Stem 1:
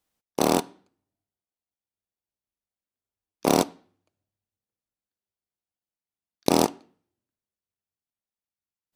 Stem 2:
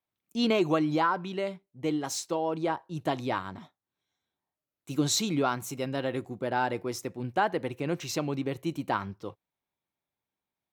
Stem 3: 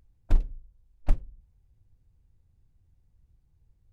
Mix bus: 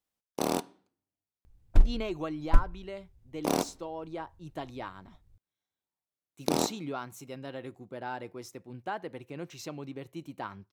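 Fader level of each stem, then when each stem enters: -8.0 dB, -9.5 dB, +2.0 dB; 0.00 s, 1.50 s, 1.45 s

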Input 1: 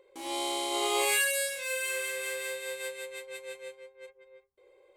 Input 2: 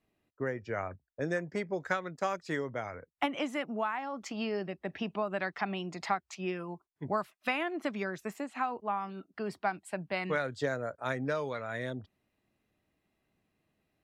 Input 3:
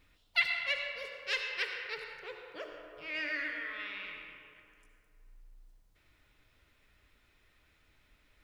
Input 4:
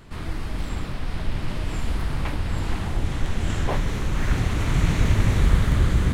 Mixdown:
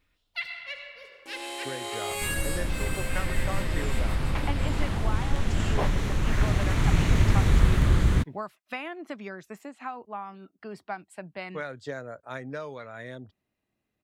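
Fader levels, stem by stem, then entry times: -5.0 dB, -3.5 dB, -5.0 dB, -1.5 dB; 1.10 s, 1.25 s, 0.00 s, 2.10 s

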